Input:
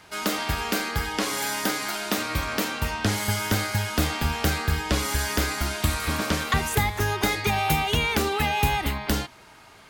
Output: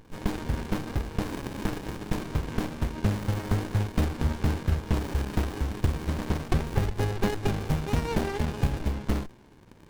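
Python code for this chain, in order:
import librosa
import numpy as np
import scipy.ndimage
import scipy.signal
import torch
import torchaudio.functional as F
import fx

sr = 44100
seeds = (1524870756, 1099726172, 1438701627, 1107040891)

y = fx.dmg_crackle(x, sr, seeds[0], per_s=87.0, level_db=-42.0)
y = fx.running_max(y, sr, window=65)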